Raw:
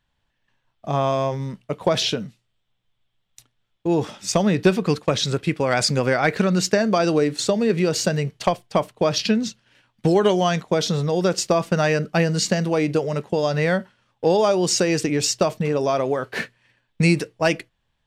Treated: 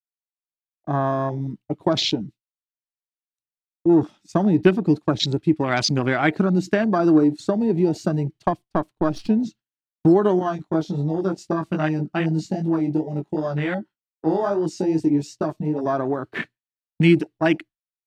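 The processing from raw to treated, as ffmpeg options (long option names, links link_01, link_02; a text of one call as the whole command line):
ffmpeg -i in.wav -filter_complex "[0:a]asettb=1/sr,asplit=3[link_01][link_02][link_03];[link_01]atrim=end=8.644[link_04];[link_02]atrim=start=8.64:end=9.29,asetpts=PTS-STARTPTS,afade=type=in:duration=0.004:curve=qsin,afade=type=out:start_time=0.646:duration=0.004:curve=qsin,aeval=exprs='if(lt(val(0),0),0.447*val(0),val(0))':channel_layout=same[link_05];[link_03]atrim=start=9.286[link_06];[link_04][link_05]acrossfade=duration=0.004:curve1=hsin:curve2=qsin[link_07];[link_07][link_06]acrossfade=duration=0.004:curve1=qsin:curve2=hsin,asettb=1/sr,asplit=3[link_08][link_09][link_10];[link_08]atrim=end=10.394[link_11];[link_09]atrim=start=10.39:end=15.86,asetpts=PTS-STARTPTS,afade=type=in:duration=0.004:curve=qsin,afade=type=out:start_time=5.466:duration=0.004:curve=qsin,flanger=delay=18.5:depth=3:speed=2.6[link_12];[link_10]atrim=start=15.856[link_13];[link_11][link_12]acrossfade=duration=0.004:curve1=hsin:curve2=qsin[link_14];[link_14][link_13]acrossfade=duration=0.004:curve1=qsin:curve2=hsin,afwtdn=0.0501,equalizer=frequency=315:width_type=o:width=0.33:gain=10,equalizer=frequency=500:width_type=o:width=0.33:gain=-11,equalizer=frequency=4000:width_type=o:width=0.33:gain=3,agate=range=-33dB:threshold=-35dB:ratio=3:detection=peak" out.wav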